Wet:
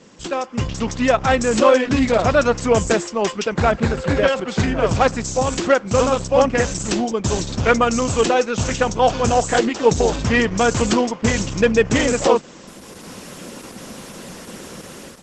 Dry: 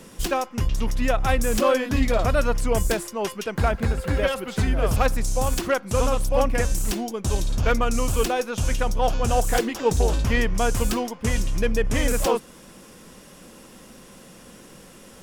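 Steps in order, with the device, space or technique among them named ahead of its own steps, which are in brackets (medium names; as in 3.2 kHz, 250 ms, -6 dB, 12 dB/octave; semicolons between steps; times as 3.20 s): video call (high-pass 110 Hz 12 dB/octave; level rider gain up to 13 dB; trim -1 dB; Opus 12 kbps 48 kHz)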